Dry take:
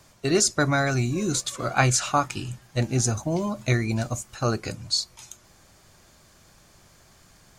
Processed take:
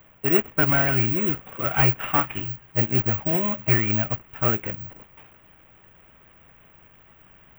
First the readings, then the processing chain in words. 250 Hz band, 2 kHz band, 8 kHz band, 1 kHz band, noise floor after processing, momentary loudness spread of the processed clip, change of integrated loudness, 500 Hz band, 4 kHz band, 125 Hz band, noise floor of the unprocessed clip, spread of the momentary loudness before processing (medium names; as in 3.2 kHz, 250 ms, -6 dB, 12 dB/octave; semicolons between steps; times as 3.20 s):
-0.5 dB, +1.5 dB, under -40 dB, -1.0 dB, -54 dBFS, 9 LU, +3.5 dB, -1.0 dB, -10.0 dB, -0.5 dB, -56 dBFS, 10 LU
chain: CVSD coder 16 kbps; careless resampling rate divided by 2×, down filtered, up zero stuff; dynamic bell 2.4 kHz, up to +6 dB, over -43 dBFS, Q 0.77